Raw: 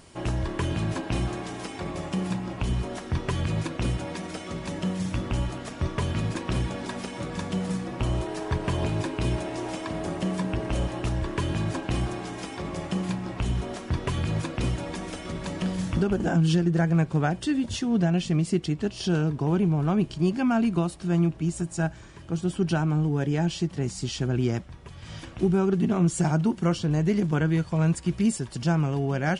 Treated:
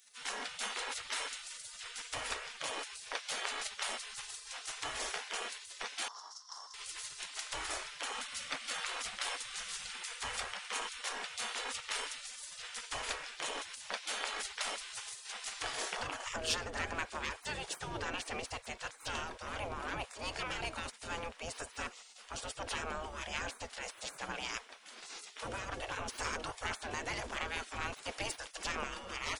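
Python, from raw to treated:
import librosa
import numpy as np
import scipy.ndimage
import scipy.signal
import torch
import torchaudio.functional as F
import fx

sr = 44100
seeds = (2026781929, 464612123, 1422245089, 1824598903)

y = 10.0 ** (-18.5 / 20.0) * np.tanh(x / 10.0 ** (-18.5 / 20.0))
y = fx.spec_gate(y, sr, threshold_db=-25, keep='weak')
y = fx.double_bandpass(y, sr, hz=2400.0, octaves=2.4, at=(6.08, 6.74))
y = F.gain(torch.from_numpy(y), 5.0).numpy()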